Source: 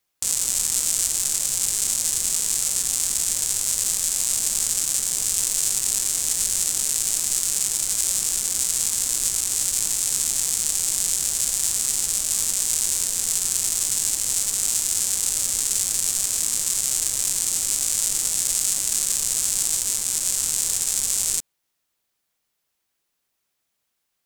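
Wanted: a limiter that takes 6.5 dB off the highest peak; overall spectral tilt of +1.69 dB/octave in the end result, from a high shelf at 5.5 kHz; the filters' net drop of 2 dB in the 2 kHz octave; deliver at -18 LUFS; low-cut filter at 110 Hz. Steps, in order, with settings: high-pass 110 Hz; peaking EQ 2 kHz -3.5 dB; treble shelf 5.5 kHz +5.5 dB; trim +2.5 dB; peak limiter -2.5 dBFS

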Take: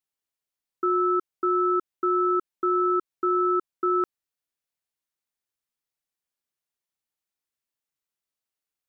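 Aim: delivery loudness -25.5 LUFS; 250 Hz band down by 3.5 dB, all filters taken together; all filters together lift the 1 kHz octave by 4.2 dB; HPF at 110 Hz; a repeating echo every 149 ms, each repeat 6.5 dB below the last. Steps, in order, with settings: high-pass 110 Hz; peaking EQ 250 Hz -8.5 dB; peaking EQ 1 kHz +7 dB; feedback delay 149 ms, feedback 47%, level -6.5 dB; trim -4.5 dB

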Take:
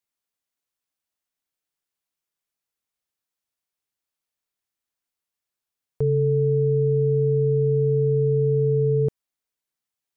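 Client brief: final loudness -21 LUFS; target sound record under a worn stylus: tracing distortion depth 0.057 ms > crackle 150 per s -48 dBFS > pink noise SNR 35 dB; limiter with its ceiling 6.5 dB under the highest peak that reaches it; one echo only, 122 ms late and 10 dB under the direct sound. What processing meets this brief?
peak limiter -20.5 dBFS; delay 122 ms -10 dB; tracing distortion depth 0.057 ms; crackle 150 per s -48 dBFS; pink noise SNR 35 dB; trim +5.5 dB

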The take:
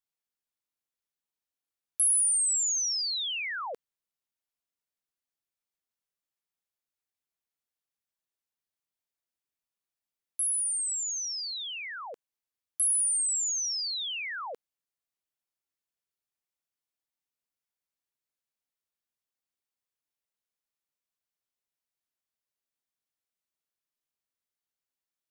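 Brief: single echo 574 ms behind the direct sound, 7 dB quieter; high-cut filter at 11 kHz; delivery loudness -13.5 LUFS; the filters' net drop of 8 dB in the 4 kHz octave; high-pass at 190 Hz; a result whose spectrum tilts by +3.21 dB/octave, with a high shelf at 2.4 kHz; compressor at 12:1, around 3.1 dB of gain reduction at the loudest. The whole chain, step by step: high-pass 190 Hz; low-pass 11 kHz; treble shelf 2.4 kHz -5 dB; peaking EQ 4 kHz -5.5 dB; compression 12:1, threshold -34 dBFS; delay 574 ms -7 dB; trim +22 dB

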